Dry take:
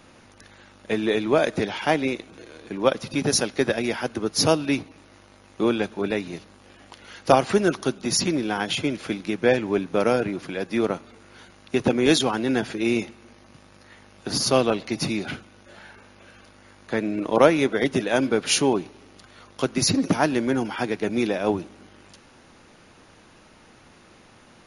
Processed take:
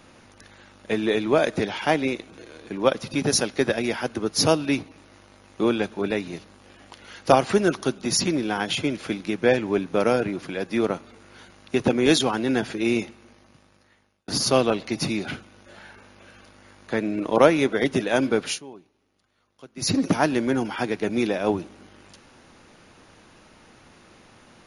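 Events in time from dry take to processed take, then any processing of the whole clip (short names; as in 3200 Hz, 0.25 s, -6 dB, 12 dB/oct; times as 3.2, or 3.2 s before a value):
12.96–14.28 fade out
18.42–19.93 dip -21 dB, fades 0.17 s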